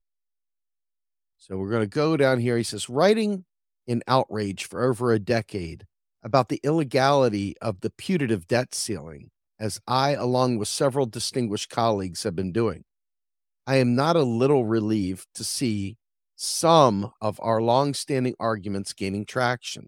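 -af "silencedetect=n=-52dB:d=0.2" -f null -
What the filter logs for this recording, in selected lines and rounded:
silence_start: 0.00
silence_end: 1.41 | silence_duration: 1.41
silence_start: 3.42
silence_end: 3.87 | silence_duration: 0.45
silence_start: 5.86
silence_end: 6.23 | silence_duration: 0.37
silence_start: 9.29
silence_end: 9.59 | silence_duration: 0.31
silence_start: 12.82
silence_end: 13.67 | silence_duration: 0.85
silence_start: 15.95
silence_end: 16.38 | silence_duration: 0.43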